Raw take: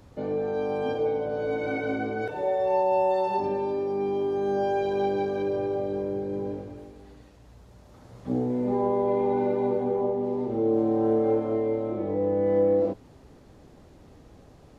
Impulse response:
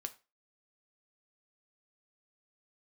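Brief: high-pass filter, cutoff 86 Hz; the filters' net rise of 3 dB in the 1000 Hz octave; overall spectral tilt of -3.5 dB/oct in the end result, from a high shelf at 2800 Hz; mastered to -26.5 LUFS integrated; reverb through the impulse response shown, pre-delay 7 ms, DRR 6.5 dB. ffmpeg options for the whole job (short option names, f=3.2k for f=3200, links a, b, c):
-filter_complex "[0:a]highpass=86,equalizer=f=1k:t=o:g=3.5,highshelf=f=2.8k:g=3.5,asplit=2[a][b];[1:a]atrim=start_sample=2205,adelay=7[c];[b][c]afir=irnorm=-1:irlink=0,volume=-4dB[d];[a][d]amix=inputs=2:normalize=0,volume=-2dB"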